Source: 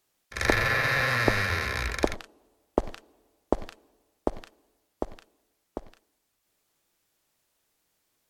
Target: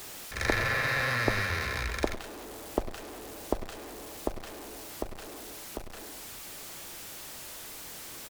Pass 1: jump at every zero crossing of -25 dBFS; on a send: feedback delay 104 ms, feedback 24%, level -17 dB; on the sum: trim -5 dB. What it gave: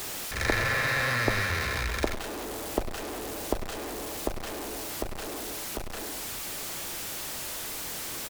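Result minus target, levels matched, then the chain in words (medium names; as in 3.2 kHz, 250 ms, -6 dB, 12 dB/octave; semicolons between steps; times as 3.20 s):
jump at every zero crossing: distortion +6 dB
jump at every zero crossing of -32.5 dBFS; on a send: feedback delay 104 ms, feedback 24%, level -17 dB; on the sum: trim -5 dB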